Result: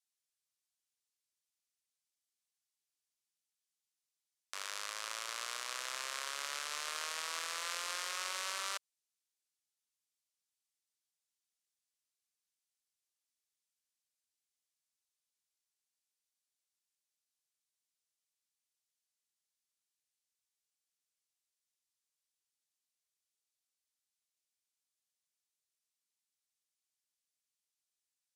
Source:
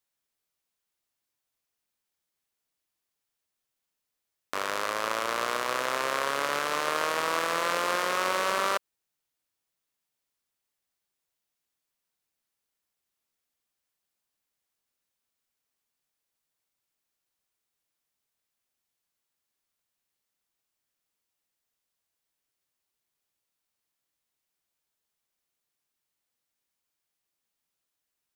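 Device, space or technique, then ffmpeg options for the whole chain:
piezo pickup straight into a mixer: -af "lowpass=7700,aderivative"

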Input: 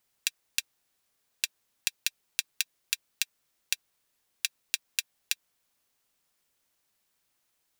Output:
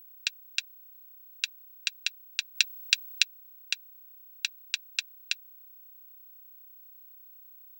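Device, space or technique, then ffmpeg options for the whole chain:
old television with a line whistle: -filter_complex "[0:a]highpass=frequency=190:width=0.5412,highpass=frequency=190:width=1.3066,equalizer=frequency=330:width_type=q:width=4:gain=-5,equalizer=frequency=1400:width_type=q:width=4:gain=7,equalizer=frequency=2700:width_type=q:width=4:gain=4,equalizer=frequency=4000:width_type=q:width=4:gain=4,lowpass=frequency=6700:width=0.5412,lowpass=frequency=6700:width=1.3066,aeval=exprs='val(0)+0.00447*sin(2*PI*15734*n/s)':channel_layout=same,asplit=3[link_01][link_02][link_03];[link_01]afade=type=out:start_time=2.55:duration=0.02[link_04];[link_02]tiltshelf=frequency=720:gain=-7.5,afade=type=in:start_time=2.55:duration=0.02,afade=type=out:start_time=3.22:duration=0.02[link_05];[link_03]afade=type=in:start_time=3.22:duration=0.02[link_06];[link_04][link_05][link_06]amix=inputs=3:normalize=0,volume=-2dB"

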